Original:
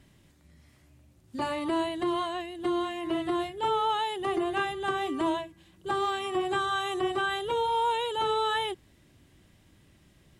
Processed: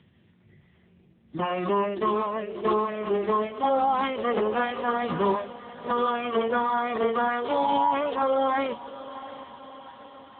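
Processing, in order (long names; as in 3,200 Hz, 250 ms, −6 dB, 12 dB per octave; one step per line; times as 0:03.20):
mains-hum notches 50/100/150/200 Hz
on a send: feedback delay with all-pass diffusion 704 ms, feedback 56%, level −15 dB
on the sum: phase-vocoder pitch shift with formants kept −8.5 semitones
level +4.5 dB
AMR narrowband 7.95 kbit/s 8,000 Hz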